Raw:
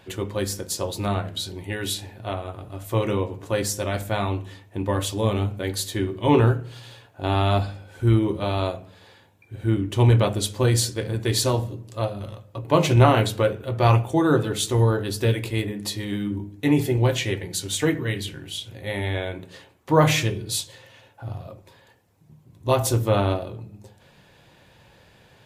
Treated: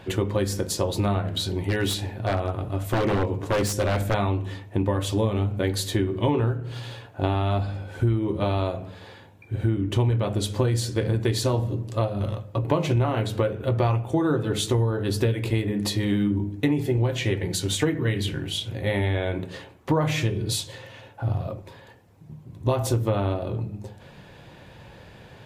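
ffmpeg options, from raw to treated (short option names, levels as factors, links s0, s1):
-filter_complex "[0:a]asettb=1/sr,asplit=3[s0][s1][s2];[s0]atrim=end=1.304[s3];[s1]atrim=start=1.3:end=4.14,asetpts=PTS-STARTPTS,afade=t=in:d=0.004:c=qsin,afade=t=out:st=2.836:d=0.004:c=qsin,aeval=exprs='0.0891*(abs(mod(val(0)/0.0891+3,4)-2)-1)':c=same[s4];[s2]atrim=start=4.136[s5];[s3][s4]acrossfade=d=0.004:c1=hsin:c2=qsin[s6];[s6][s5]acrossfade=d=0.004:c1=qsin:c2=hsin,lowshelf=f=500:g=3,acompressor=threshold=0.0562:ratio=12,highshelf=f=4400:g=-7,volume=2"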